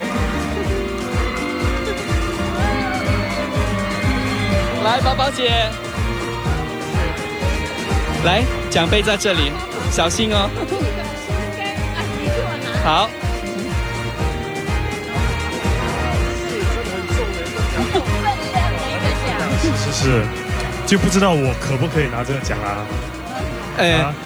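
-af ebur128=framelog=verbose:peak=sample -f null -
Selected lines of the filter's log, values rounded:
Integrated loudness:
  I:         -19.5 LUFS
  Threshold: -29.5 LUFS
Loudness range:
  LRA:         3.1 LU
  Threshold: -39.4 LUFS
  LRA low:   -21.0 LUFS
  LRA high:  -17.9 LUFS
Sample peak:
  Peak:       -2.2 dBFS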